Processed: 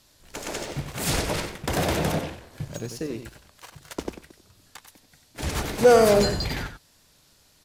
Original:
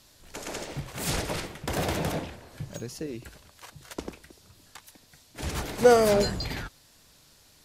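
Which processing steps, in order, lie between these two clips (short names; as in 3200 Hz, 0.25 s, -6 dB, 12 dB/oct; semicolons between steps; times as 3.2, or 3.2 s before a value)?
sample leveller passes 1; outdoor echo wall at 16 m, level -9 dB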